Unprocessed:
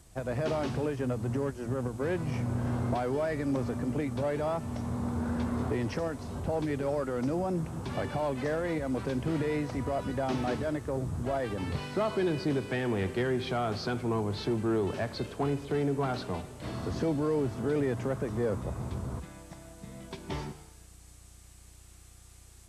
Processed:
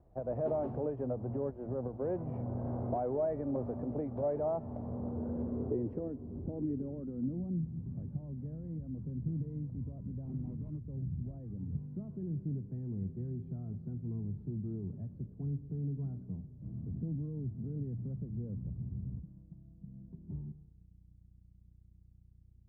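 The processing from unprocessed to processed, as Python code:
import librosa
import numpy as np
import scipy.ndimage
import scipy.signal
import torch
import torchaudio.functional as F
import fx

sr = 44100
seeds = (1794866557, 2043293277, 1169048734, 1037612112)

y = fx.sample_hold(x, sr, seeds[0], rate_hz=1600.0, jitter_pct=20, at=(10.25, 10.82))
y = fx.filter_sweep_lowpass(y, sr, from_hz=660.0, to_hz=170.0, start_s=4.7, end_s=7.92, q=2.0)
y = y * 10.0 ** (-7.0 / 20.0)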